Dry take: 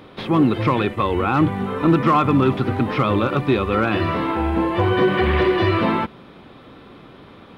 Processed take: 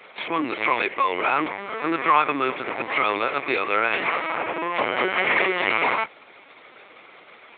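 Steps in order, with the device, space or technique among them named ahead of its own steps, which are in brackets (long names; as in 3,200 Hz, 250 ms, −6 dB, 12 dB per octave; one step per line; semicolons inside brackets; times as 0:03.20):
talking toy (linear-prediction vocoder at 8 kHz pitch kept; high-pass filter 550 Hz 12 dB per octave; parametric band 2,200 Hz +11.5 dB 0.39 octaves)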